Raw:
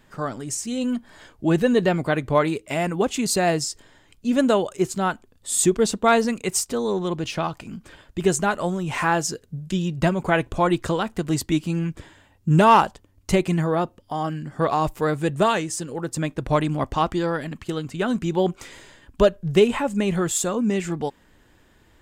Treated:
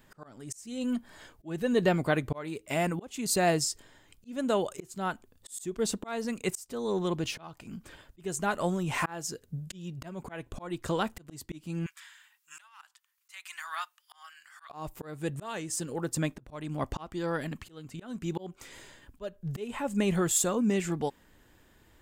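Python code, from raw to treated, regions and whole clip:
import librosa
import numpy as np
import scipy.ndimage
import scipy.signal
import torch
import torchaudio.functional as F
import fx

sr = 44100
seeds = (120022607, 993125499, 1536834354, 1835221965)

y = fx.chain(x, sr, fx.cheby2_highpass(hz=480.0, order=4, stop_db=50),
    fx.over_compress(threshold_db=-29.0, ratio=-0.5), at=(11.86, 14.7))
y = fx.high_shelf(y, sr, hz=12000.0, db=11.0)
y = fx.auto_swell(y, sr, attack_ms=441.0)
y = y * librosa.db_to_amplitude(-4.5)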